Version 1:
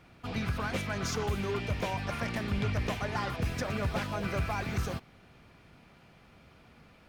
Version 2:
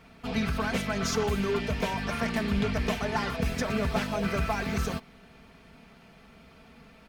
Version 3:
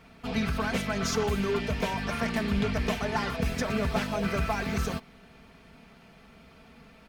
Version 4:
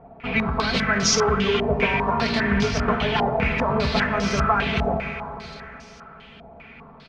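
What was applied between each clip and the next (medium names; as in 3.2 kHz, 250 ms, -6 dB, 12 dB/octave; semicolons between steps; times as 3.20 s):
comb 4.5 ms, depth 62%; trim +3 dB
no audible change
delay 682 ms -18.5 dB; reverberation RT60 3.6 s, pre-delay 3 ms, DRR 4.5 dB; step-sequenced low-pass 5 Hz 740–5700 Hz; trim +4 dB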